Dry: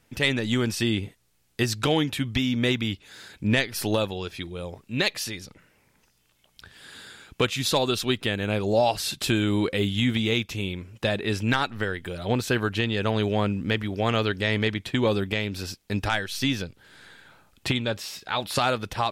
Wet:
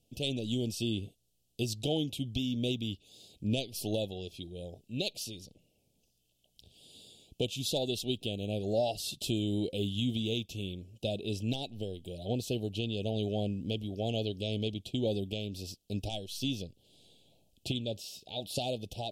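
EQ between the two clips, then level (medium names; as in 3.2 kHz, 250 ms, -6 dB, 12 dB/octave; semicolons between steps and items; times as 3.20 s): elliptic band-stop 700–2900 Hz, stop band 40 dB; -7.5 dB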